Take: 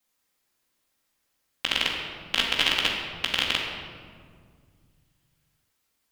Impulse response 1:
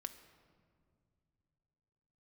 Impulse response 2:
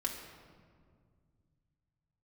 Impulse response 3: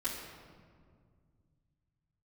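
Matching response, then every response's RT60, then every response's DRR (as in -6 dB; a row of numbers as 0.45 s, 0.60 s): 3; no single decay rate, 2.0 s, 2.0 s; 7.5 dB, -1.5 dB, -10.5 dB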